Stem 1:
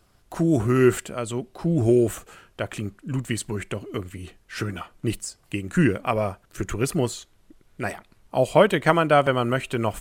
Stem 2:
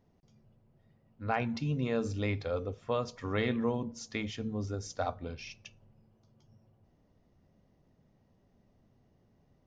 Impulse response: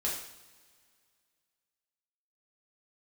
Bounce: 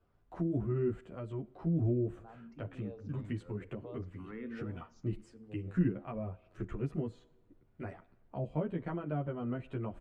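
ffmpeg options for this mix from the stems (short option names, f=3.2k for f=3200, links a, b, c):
-filter_complex "[0:a]lowpass=4.4k,asplit=2[a][b];[b]adelay=10.7,afreqshift=1.3[c];[a][c]amix=inputs=2:normalize=1,volume=-7dB,asplit=3[d][e][f];[e]volume=-22.5dB[g];[1:a]asplit=2[h][i];[i]afreqshift=1.1[j];[h][j]amix=inputs=2:normalize=1,adelay=950,volume=-6dB[k];[f]apad=whole_len=468175[l];[k][l]sidechaincompress=threshold=-42dB:ratio=8:attack=16:release=795[m];[2:a]atrim=start_sample=2205[n];[g][n]afir=irnorm=-1:irlink=0[o];[d][m][o]amix=inputs=3:normalize=0,equalizer=f=5.9k:t=o:w=2.8:g=-15,acrossover=split=320[p][q];[q]acompressor=threshold=-45dB:ratio=3[r];[p][r]amix=inputs=2:normalize=0"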